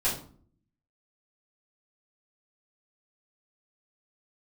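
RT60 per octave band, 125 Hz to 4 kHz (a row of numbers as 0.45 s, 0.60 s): 0.90 s, 0.80 s, 0.55 s, 0.45 s, 0.35 s, 0.30 s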